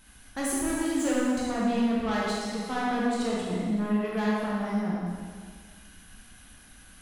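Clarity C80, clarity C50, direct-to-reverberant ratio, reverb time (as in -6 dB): 0.0 dB, -2.5 dB, -6.5 dB, 1.8 s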